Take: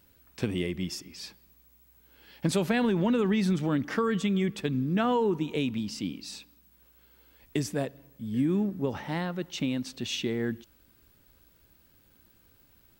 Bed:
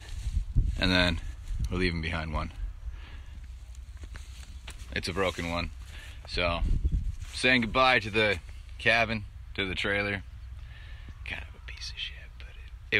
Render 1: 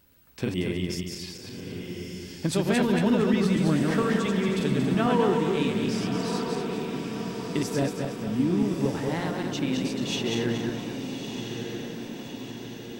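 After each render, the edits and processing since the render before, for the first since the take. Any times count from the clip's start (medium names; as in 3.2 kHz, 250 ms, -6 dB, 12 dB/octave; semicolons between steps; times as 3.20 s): backward echo that repeats 115 ms, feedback 65%, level -2.5 dB; echo that smears into a reverb 1244 ms, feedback 59%, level -7 dB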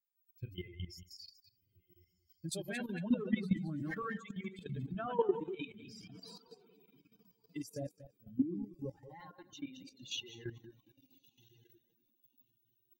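expander on every frequency bin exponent 3; level held to a coarse grid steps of 13 dB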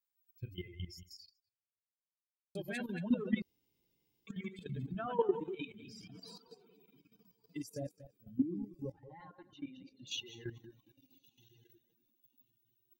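1.15–2.55 s: fade out exponential; 3.42–4.27 s: room tone; 8.92–10.07 s: distance through air 290 m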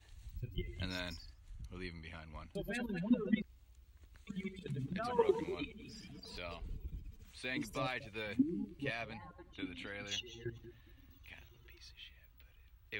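add bed -18 dB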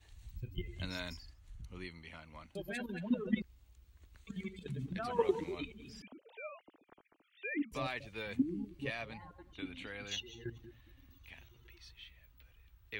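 1.84–3.27 s: bass shelf 120 Hz -8.5 dB; 6.02–7.72 s: formants replaced by sine waves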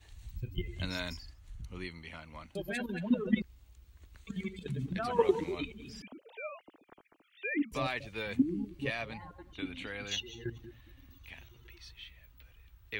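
trim +4.5 dB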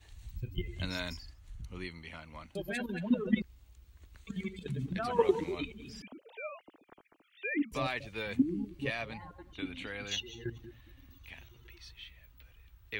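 no audible change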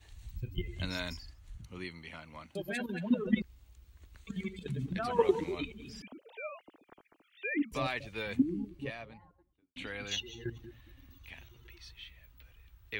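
1.57–3.22 s: high-pass 90 Hz; 8.30–9.76 s: studio fade out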